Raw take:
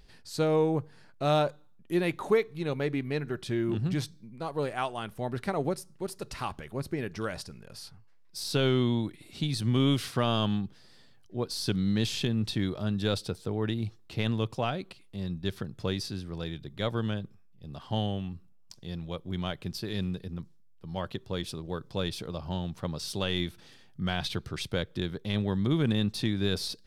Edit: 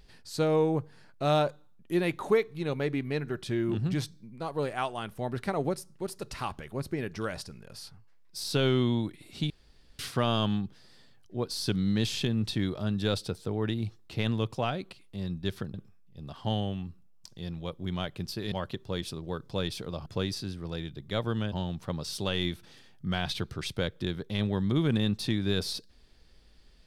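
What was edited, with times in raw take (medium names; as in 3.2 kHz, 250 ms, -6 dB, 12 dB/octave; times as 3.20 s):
9.50–9.99 s: room tone
15.74–17.20 s: move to 22.47 s
19.98–20.93 s: delete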